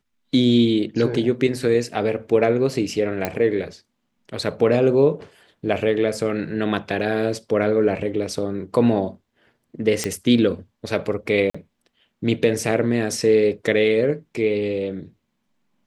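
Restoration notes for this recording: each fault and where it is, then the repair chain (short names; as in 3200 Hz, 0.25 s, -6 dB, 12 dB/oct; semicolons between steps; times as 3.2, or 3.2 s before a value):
3.25 pop -8 dBFS
10.04 pop -8 dBFS
11.5–11.54 gap 45 ms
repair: de-click; interpolate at 11.5, 45 ms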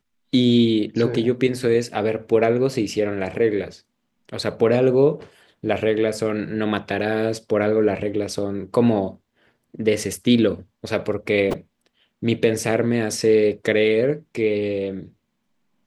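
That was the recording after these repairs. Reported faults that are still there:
none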